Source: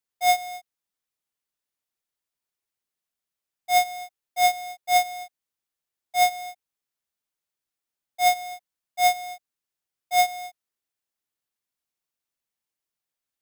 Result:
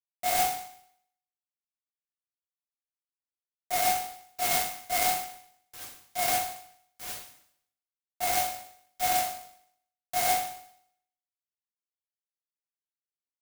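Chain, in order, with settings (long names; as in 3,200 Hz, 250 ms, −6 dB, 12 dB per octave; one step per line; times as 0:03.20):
on a send: feedback delay with all-pass diffusion 738 ms, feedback 62%, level −13 dB
on the sum: dynamic equaliser 110 Hz, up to −7 dB, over −49 dBFS, Q 1
in parallel at −11 dB: gain into a clipping stage and back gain 22 dB
on the sum: bit reduction 4 bits
high-shelf EQ 11,000 Hz +6.5 dB
resonators tuned to a chord G2 fifth, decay 0.66 s
reverb whose tail is shaped and stops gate 90 ms rising, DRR −6.5 dB
converter with an unsteady clock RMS 0.085 ms
level +6.5 dB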